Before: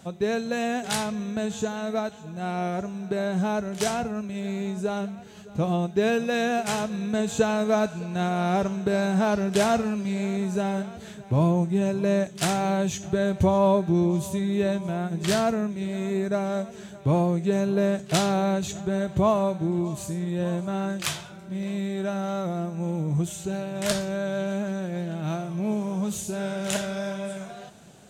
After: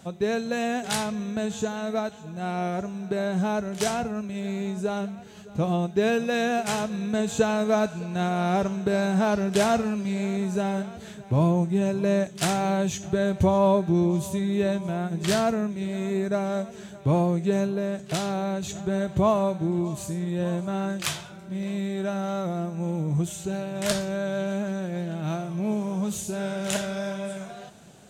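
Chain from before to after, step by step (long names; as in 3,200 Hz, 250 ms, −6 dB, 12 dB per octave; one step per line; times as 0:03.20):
0:17.66–0:18.84: downward compressor 2 to 1, threshold −28 dBFS, peak gain reduction 6 dB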